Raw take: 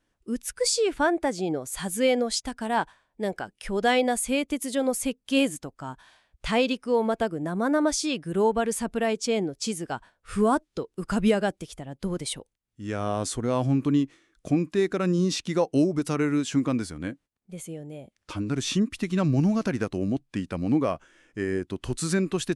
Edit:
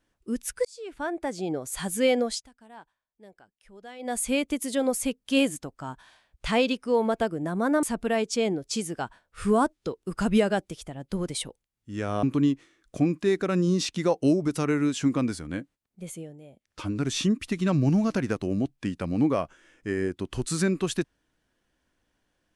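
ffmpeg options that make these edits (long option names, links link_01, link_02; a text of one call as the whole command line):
ffmpeg -i in.wav -filter_complex "[0:a]asplit=8[link_01][link_02][link_03][link_04][link_05][link_06][link_07][link_08];[link_01]atrim=end=0.65,asetpts=PTS-STARTPTS,afade=type=out:start_time=0.646:duration=0.004:curve=hsin[link_09];[link_02]atrim=start=0.65:end=2.48,asetpts=PTS-STARTPTS,afade=type=in:duration=1.06,afade=type=out:start_time=1.6:duration=0.23:silence=0.0794328[link_10];[link_03]atrim=start=2.48:end=3.99,asetpts=PTS-STARTPTS,volume=-22dB[link_11];[link_04]atrim=start=3.99:end=7.832,asetpts=PTS-STARTPTS,afade=type=in:duration=0.23:silence=0.0794328[link_12];[link_05]atrim=start=8.738:end=13.142[link_13];[link_06]atrim=start=13.738:end=17.89,asetpts=PTS-STARTPTS,afade=type=out:start_time=3.912:duration=0.24:silence=0.398107[link_14];[link_07]atrim=start=17.89:end=18.1,asetpts=PTS-STARTPTS,volume=-8dB[link_15];[link_08]atrim=start=18.1,asetpts=PTS-STARTPTS,afade=type=in:duration=0.24:silence=0.398107[link_16];[link_09][link_10][link_11][link_12]concat=n=4:v=0:a=1[link_17];[link_17][link_13]acrossfade=duration=0.004:curve1=hsin:curve2=hsin[link_18];[link_14][link_15][link_16]concat=n=3:v=0:a=1[link_19];[link_18][link_19]acrossfade=duration=0.004:curve1=hsin:curve2=hsin" out.wav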